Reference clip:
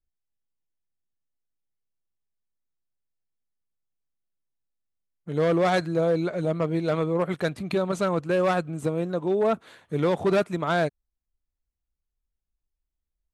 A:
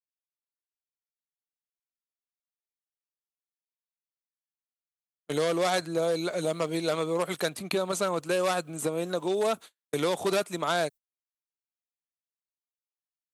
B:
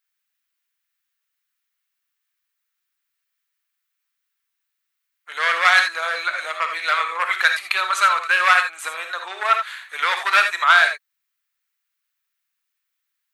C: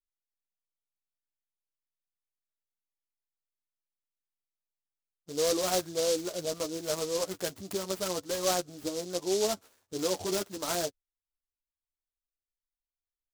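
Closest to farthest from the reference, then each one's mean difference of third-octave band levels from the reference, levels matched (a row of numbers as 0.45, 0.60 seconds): A, C, B; 6.5, 10.0, 15.0 decibels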